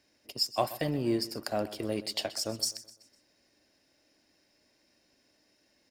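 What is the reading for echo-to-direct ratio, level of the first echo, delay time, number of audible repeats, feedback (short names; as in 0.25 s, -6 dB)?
-15.5 dB, -16.5 dB, 0.126 s, 3, 44%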